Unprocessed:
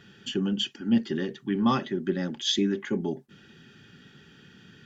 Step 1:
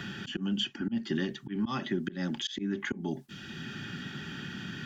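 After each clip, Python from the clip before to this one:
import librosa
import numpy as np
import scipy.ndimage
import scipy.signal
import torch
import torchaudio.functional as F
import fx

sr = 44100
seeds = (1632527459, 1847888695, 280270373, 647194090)

y = fx.peak_eq(x, sr, hz=460.0, db=-14.0, octaves=0.31)
y = fx.auto_swell(y, sr, attack_ms=265.0)
y = fx.band_squash(y, sr, depth_pct=70)
y = F.gain(torch.from_numpy(y), 2.5).numpy()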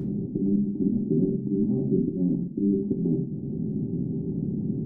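y = fx.bin_compress(x, sr, power=0.6)
y = scipy.ndimage.gaussian_filter1d(y, 21.0, mode='constant')
y = fx.room_shoebox(y, sr, seeds[0], volume_m3=47.0, walls='mixed', distance_m=0.48)
y = F.gain(torch.from_numpy(y), 7.0).numpy()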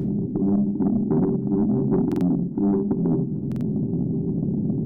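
y = 10.0 ** (-19.5 / 20.0) * np.tanh(x / 10.0 ** (-19.5 / 20.0))
y = fx.echo_feedback(y, sr, ms=306, feedback_pct=54, wet_db=-23)
y = fx.buffer_glitch(y, sr, at_s=(2.07, 3.47), block=2048, repeats=2)
y = F.gain(torch.from_numpy(y), 5.5).numpy()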